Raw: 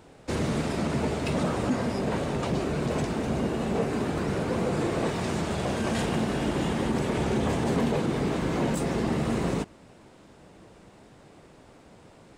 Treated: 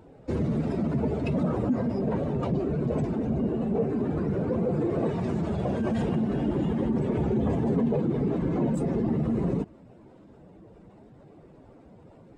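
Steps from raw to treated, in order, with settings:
expanding power law on the bin magnitudes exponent 1.7
level +1 dB

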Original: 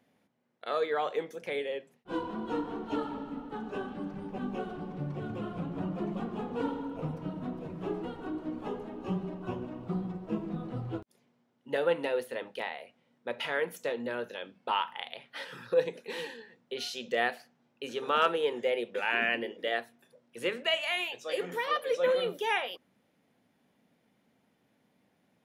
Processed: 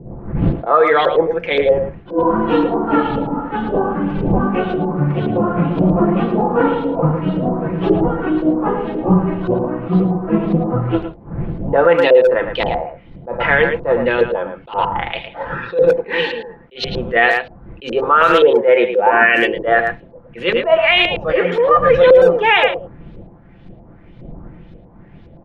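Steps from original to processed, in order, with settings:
wind on the microphone 170 Hz −48 dBFS
high-shelf EQ 3,000 Hz −7 dB
comb filter 5.9 ms, depth 40%
auto-filter low-pass saw up 1.9 Hz 470–4,400 Hz
far-end echo of a speakerphone 110 ms, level −8 dB
boost into a limiter +18.5 dB
level that may rise only so fast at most 220 dB per second
level −1 dB

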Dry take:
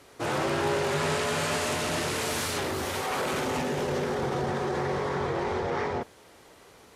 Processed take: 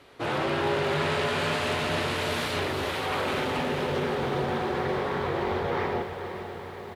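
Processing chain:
high shelf with overshoot 4,800 Hz −8 dB, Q 1.5
repeating echo 465 ms, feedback 59%, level −12 dB
feedback echo at a low word length 281 ms, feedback 80%, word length 9 bits, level −13 dB

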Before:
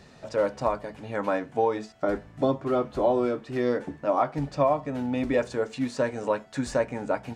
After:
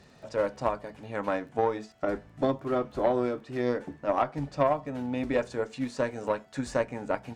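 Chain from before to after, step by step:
surface crackle 12 per second −46 dBFS
harmonic generator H 3 −18 dB, 4 −30 dB, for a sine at −10.5 dBFS

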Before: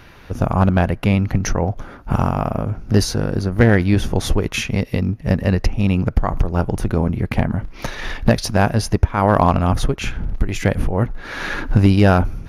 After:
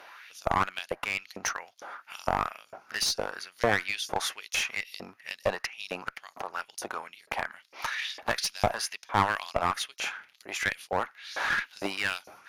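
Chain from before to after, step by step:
auto-filter high-pass saw up 2.2 Hz 560–5,700 Hz
asymmetric clip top −19.5 dBFS
level −5 dB

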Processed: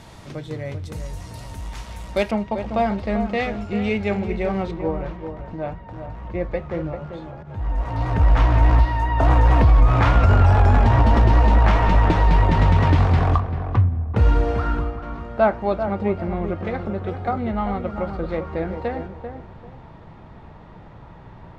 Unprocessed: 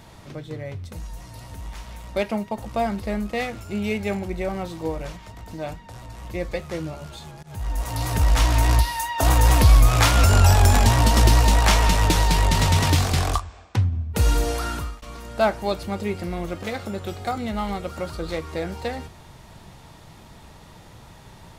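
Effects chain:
low-pass filter 11,000 Hz 12 dB per octave, from 0:02.31 3,600 Hz, from 0:04.71 1,700 Hz
feedback echo with a low-pass in the loop 391 ms, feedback 25%, low-pass 1,300 Hz, level −7.5 dB
boost into a limiter +8.5 dB
level −5.5 dB

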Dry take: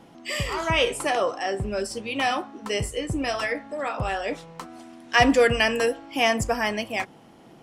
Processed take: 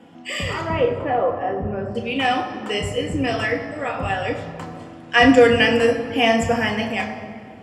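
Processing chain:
0:00.61–0:01.95: low-pass filter 1,200 Hz 12 dB per octave
convolution reverb RT60 2.1 s, pre-delay 3 ms, DRR 2 dB
level −6.5 dB

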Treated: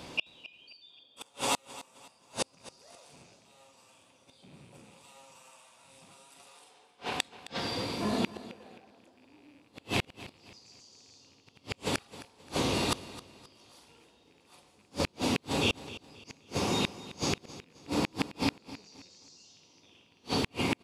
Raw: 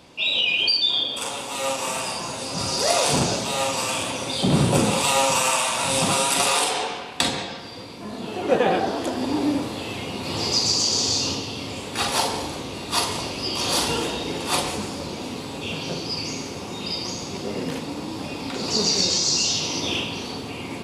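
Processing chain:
loose part that buzzes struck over −30 dBFS, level −17 dBFS
gate with flip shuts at −19 dBFS, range −39 dB
repeating echo 264 ms, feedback 35%, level −16.5 dB
level +3.5 dB

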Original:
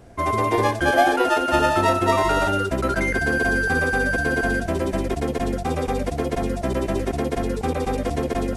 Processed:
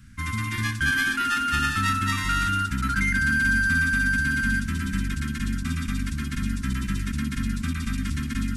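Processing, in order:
elliptic band-stop filter 230–1,400 Hz, stop band 70 dB
on a send: delay with a band-pass on its return 382 ms, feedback 67%, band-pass 420 Hz, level −8 dB
on the sum: level +1 dB

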